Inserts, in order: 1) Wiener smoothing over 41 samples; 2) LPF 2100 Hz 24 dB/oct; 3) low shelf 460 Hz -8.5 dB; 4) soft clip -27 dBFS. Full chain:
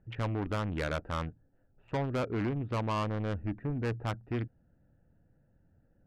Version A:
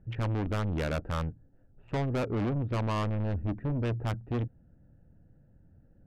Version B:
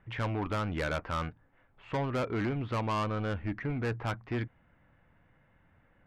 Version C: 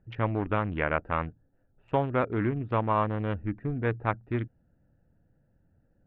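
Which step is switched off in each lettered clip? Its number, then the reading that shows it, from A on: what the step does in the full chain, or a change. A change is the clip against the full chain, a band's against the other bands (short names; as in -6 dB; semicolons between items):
3, 125 Hz band +3.5 dB; 1, 2 kHz band +2.5 dB; 4, distortion -8 dB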